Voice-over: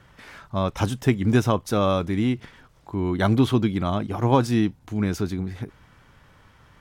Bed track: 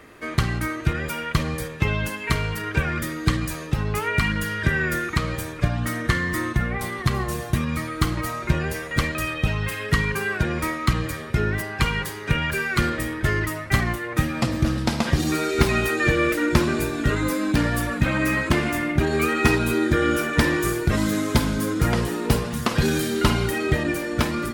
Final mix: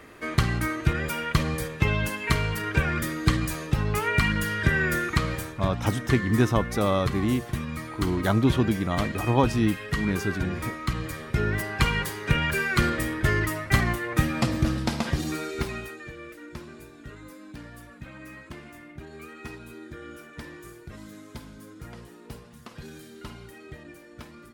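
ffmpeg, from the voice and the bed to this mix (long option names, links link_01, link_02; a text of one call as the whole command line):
ffmpeg -i stem1.wav -i stem2.wav -filter_complex "[0:a]adelay=5050,volume=-2.5dB[link_01];[1:a]volume=5.5dB,afade=type=out:start_time=5.22:duration=0.38:silence=0.473151,afade=type=in:start_time=10.88:duration=0.84:silence=0.473151,afade=type=out:start_time=14.33:duration=1.72:silence=0.0944061[link_02];[link_01][link_02]amix=inputs=2:normalize=0" out.wav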